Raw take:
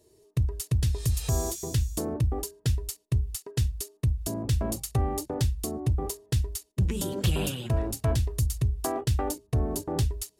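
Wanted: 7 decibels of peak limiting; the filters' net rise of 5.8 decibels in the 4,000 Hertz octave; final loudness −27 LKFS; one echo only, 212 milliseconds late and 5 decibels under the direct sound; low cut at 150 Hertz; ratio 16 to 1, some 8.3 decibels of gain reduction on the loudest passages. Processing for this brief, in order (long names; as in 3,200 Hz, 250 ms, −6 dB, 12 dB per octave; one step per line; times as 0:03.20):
high-pass filter 150 Hz
parametric band 4,000 Hz +7.5 dB
downward compressor 16 to 1, threshold −33 dBFS
brickwall limiter −26 dBFS
single-tap delay 212 ms −5 dB
level +12 dB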